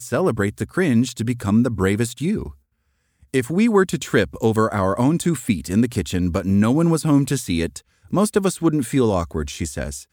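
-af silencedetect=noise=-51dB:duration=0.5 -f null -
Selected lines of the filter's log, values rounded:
silence_start: 2.57
silence_end: 3.22 | silence_duration: 0.65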